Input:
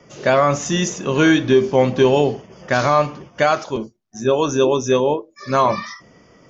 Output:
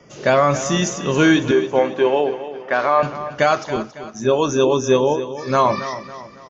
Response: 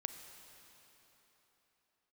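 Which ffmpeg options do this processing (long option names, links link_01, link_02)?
-filter_complex "[0:a]asettb=1/sr,asplit=3[link_01][link_02][link_03];[link_01]atrim=end=1.514[link_04];[link_02]atrim=start=1.51:end=3.03,asetpts=PTS-STARTPTS,afade=type=in:duration=0.004:curve=qsin,afade=type=out:start_time=1.516:duration=0.004:curve=qsin,highpass=390,lowpass=2500[link_05];[link_03]atrim=start=3.026[link_06];[link_04][link_05]acrossfade=duration=0.004:curve1=hsin:curve2=qsin[link_07];[link_07][link_06]acrossfade=duration=0.004:curve1=qsin:curve2=hsin,asplit=2[link_08][link_09];[link_09]aecho=0:1:276|552|828|1104:0.237|0.0996|0.0418|0.0176[link_10];[link_08][link_10]amix=inputs=2:normalize=0"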